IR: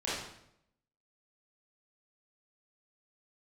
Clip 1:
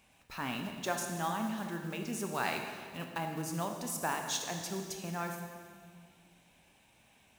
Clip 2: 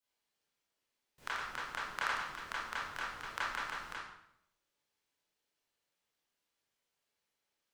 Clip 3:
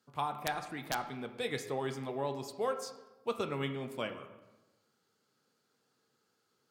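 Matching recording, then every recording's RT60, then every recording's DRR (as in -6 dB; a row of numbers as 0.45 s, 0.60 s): 2; 1.9 s, 0.75 s, 1.1 s; 3.5 dB, -10.0 dB, 6.5 dB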